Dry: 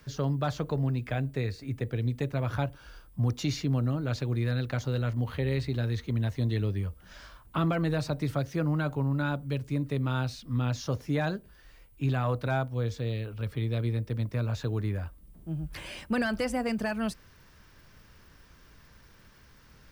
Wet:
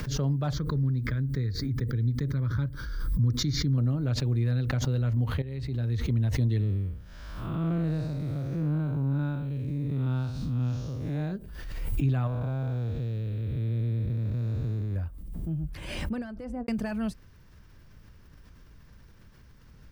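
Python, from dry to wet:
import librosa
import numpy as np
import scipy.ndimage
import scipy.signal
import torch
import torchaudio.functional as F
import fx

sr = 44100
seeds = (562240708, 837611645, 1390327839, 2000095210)

y = fx.fixed_phaser(x, sr, hz=2700.0, stages=6, at=(0.53, 3.78))
y = fx.spec_blur(y, sr, span_ms=204.0, at=(6.59, 11.31), fade=0.02)
y = fx.spec_blur(y, sr, span_ms=475.0, at=(12.27, 14.96))
y = fx.studio_fade_out(y, sr, start_s=15.76, length_s=0.92)
y = fx.edit(y, sr, fx.fade_in_from(start_s=5.42, length_s=0.59, floor_db=-14.0), tone=tone)
y = fx.low_shelf(y, sr, hz=310.0, db=11.0)
y = fx.pre_swell(y, sr, db_per_s=35.0)
y = F.gain(torch.from_numpy(y), -6.5).numpy()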